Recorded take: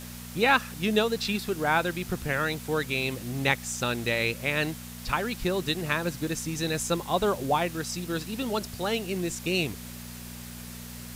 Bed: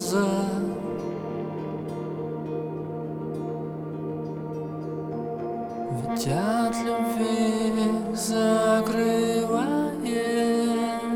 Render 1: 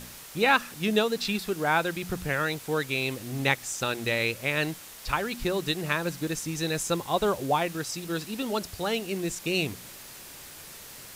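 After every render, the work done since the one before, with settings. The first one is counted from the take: de-hum 60 Hz, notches 4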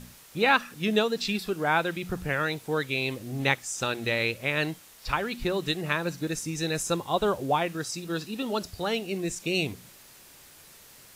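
noise print and reduce 7 dB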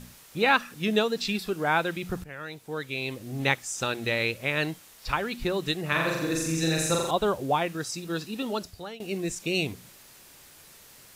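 2.24–3.47 fade in, from -16 dB; 5.88–7.11 flutter echo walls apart 7.4 m, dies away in 1 s; 8.47–9 fade out, to -19 dB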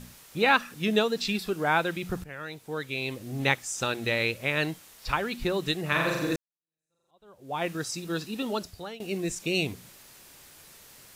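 6.36–7.65 fade in exponential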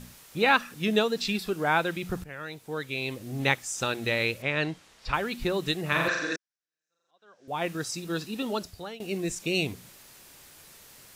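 4.42–5.14 air absorption 78 m; 6.08–7.48 speaker cabinet 330–7000 Hz, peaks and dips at 370 Hz -6 dB, 560 Hz -4 dB, 900 Hz -6 dB, 1600 Hz +10 dB, 5600 Hz +7 dB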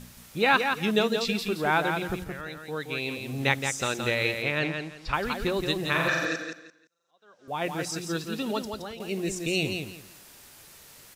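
feedback echo 0.171 s, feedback 23%, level -6 dB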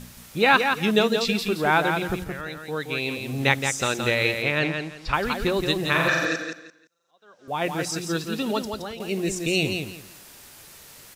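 gain +4 dB

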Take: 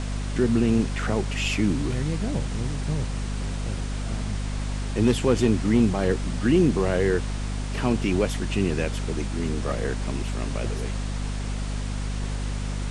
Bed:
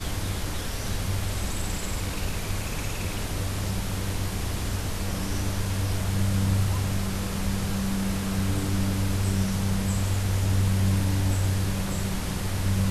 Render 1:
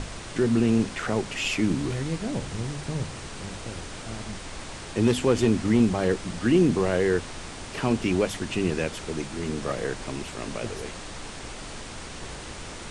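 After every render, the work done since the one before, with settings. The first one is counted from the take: notches 50/100/150/200/250 Hz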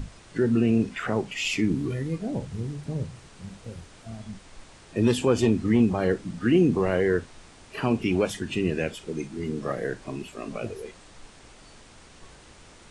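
noise print and reduce 12 dB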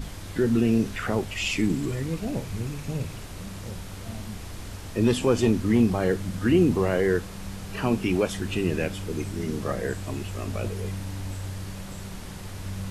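add bed -9.5 dB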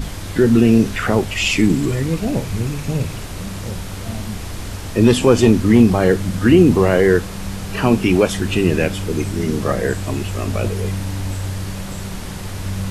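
gain +9.5 dB; limiter -1 dBFS, peak gain reduction 1.5 dB

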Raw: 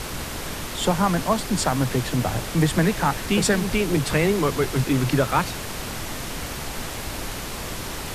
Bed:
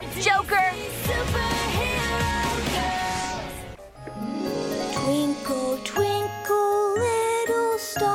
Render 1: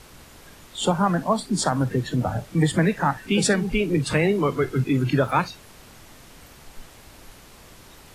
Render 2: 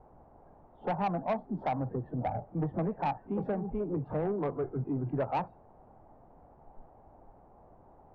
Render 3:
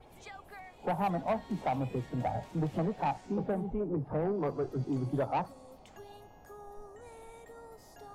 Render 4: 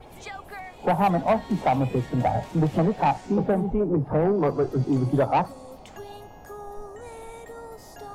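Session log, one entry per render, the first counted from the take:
noise print and reduce 16 dB
ladder low-pass 880 Hz, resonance 60%; soft clip -24.5 dBFS, distortion -13 dB
add bed -28.5 dB
gain +10 dB

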